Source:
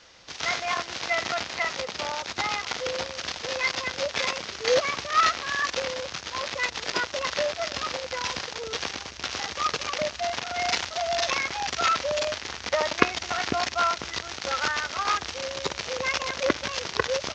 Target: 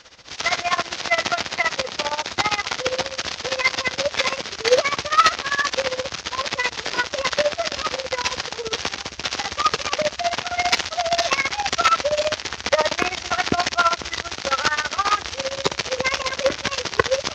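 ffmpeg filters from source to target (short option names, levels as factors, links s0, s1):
-af "acontrast=90,tremolo=f=15:d=0.82,volume=1.26"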